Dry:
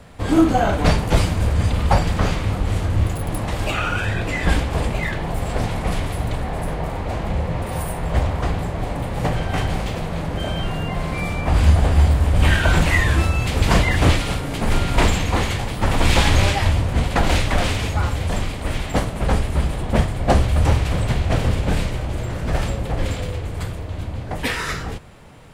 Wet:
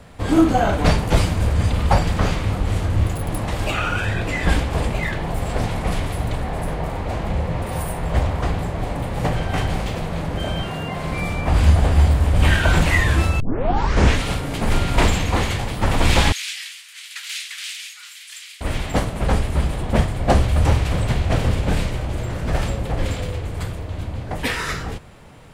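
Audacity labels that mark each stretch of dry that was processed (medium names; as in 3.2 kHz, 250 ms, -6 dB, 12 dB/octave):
10.630000	11.050000	high-pass 140 Hz 6 dB/octave
13.400000	13.400000	tape start 0.86 s
16.320000	18.610000	Bessel high-pass 3 kHz, order 6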